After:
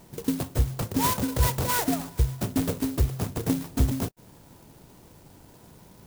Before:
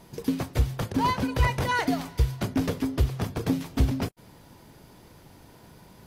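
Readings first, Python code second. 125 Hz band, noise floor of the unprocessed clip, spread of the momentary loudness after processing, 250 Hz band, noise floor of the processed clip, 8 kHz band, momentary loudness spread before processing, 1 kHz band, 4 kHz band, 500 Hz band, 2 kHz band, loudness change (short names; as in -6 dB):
0.0 dB, -53 dBFS, 5 LU, 0.0 dB, -53 dBFS, +9.5 dB, 5 LU, -2.0 dB, +0.5 dB, -0.5 dB, -4.5 dB, +0.5 dB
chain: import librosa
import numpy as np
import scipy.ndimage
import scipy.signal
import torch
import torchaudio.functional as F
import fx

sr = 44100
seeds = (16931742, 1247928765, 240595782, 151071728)

y = fx.clock_jitter(x, sr, seeds[0], jitter_ms=0.12)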